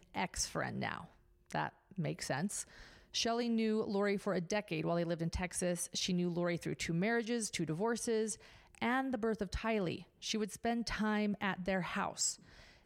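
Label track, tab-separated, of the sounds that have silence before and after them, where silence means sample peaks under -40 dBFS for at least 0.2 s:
1.510000	1.690000	sound
1.980000	2.620000	sound
3.150000	8.340000	sound
8.820000	9.980000	sound
10.240000	12.330000	sound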